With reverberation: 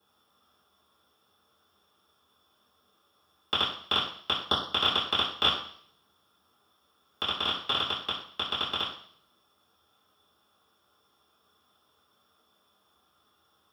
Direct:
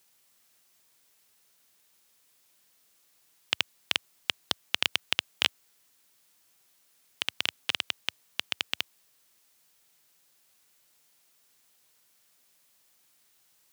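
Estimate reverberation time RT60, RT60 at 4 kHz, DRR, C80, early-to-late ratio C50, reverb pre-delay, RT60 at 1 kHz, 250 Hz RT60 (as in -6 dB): 0.60 s, 0.65 s, -10.5 dB, 9.0 dB, 5.0 dB, 3 ms, 0.55 s, 0.60 s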